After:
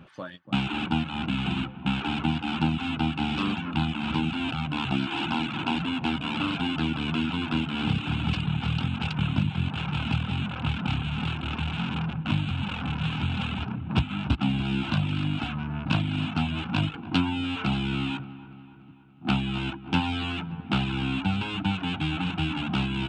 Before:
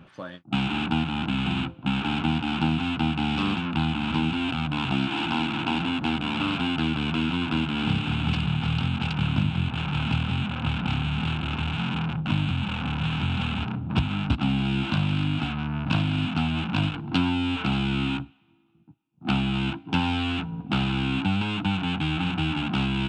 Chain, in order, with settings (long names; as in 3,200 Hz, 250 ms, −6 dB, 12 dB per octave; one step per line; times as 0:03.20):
reverb reduction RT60 0.77 s
delay with a low-pass on its return 288 ms, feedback 55%, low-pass 1,800 Hz, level −14.5 dB